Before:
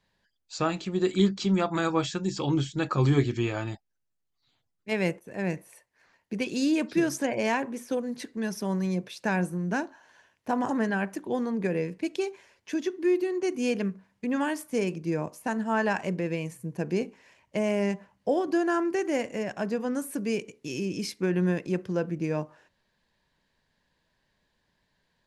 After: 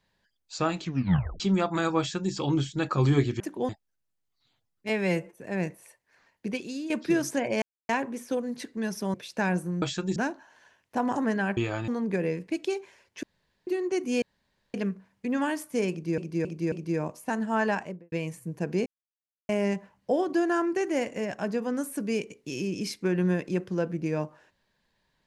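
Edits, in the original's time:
0.82 tape stop 0.58 s
1.99–2.33 copy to 9.69
3.4–3.71 swap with 11.1–11.39
4.91–5.21 stretch 1.5×
6.35–6.77 fade out quadratic, to -11.5 dB
7.49 insert silence 0.27 s
8.74–9.01 cut
12.74–13.18 room tone
13.73 insert room tone 0.52 s
14.9–15.17 loop, 4 plays
15.84–16.3 studio fade out
17.04–17.67 mute

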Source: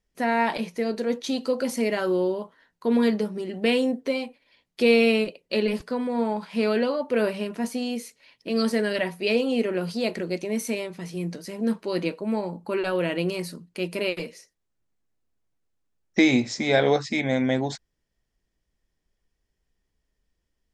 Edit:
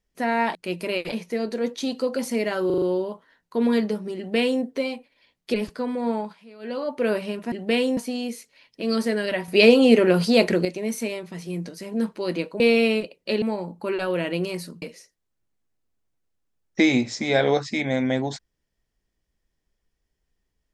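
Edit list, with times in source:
2.12 stutter 0.04 s, 5 plays
3.47–3.92 copy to 7.64
4.84–5.66 move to 12.27
6.27–7.01 dip -23 dB, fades 0.30 s
9.15–10.32 gain +9 dB
13.67–14.21 move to 0.55

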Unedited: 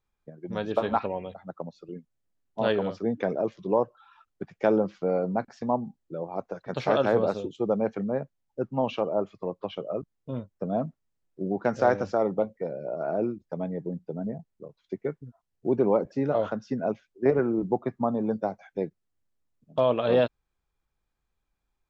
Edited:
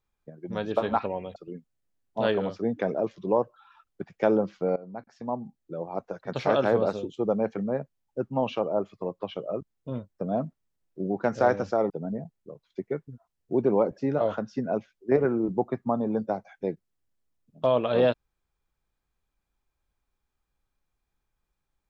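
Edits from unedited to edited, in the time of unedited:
1.36–1.77 cut
5.17–6.25 fade in, from -19 dB
12.31–14.04 cut

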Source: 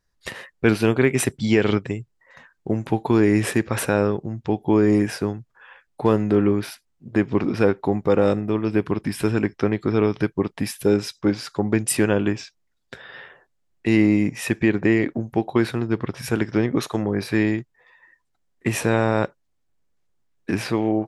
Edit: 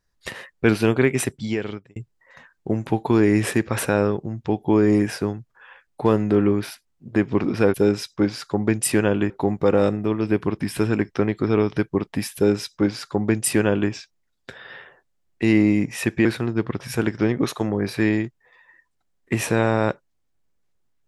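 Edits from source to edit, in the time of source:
1.02–1.96 fade out
10.79–12.35 copy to 7.74
14.69–15.59 cut

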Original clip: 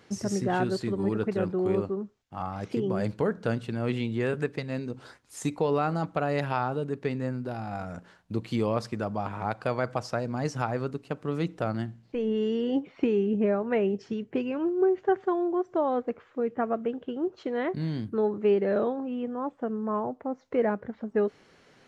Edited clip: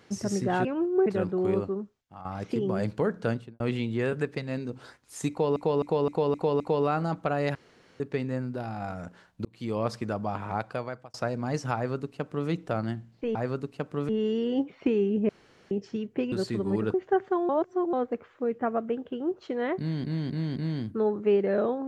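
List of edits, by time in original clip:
0.65–1.27 swap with 14.49–14.9
1.97–2.46 fade out, to -13 dB
3.5–3.81 studio fade out
5.51–5.77 loop, 6 plays
6.46–6.91 room tone
8.36–8.78 fade in
9.47–10.05 fade out
10.66–11.4 copy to 12.26
13.46–13.88 room tone
15.45–15.89 reverse
17.74–18 loop, 4 plays

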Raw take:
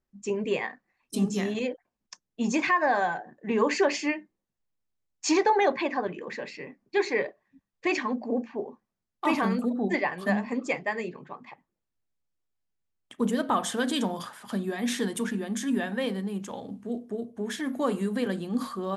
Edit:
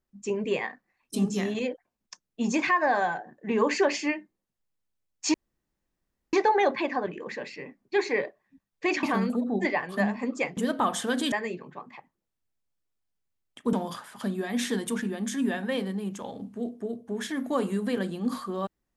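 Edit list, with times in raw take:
5.34 insert room tone 0.99 s
8.04–9.32 cut
13.27–14.02 move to 10.86

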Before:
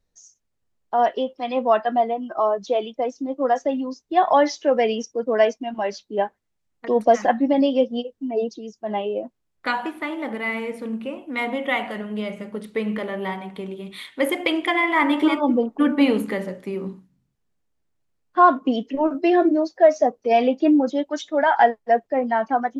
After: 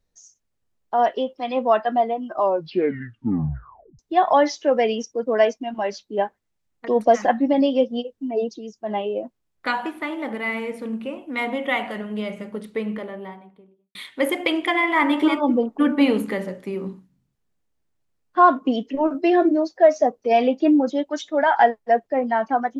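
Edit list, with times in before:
2.32 tape stop 1.67 s
12.43–13.95 studio fade out

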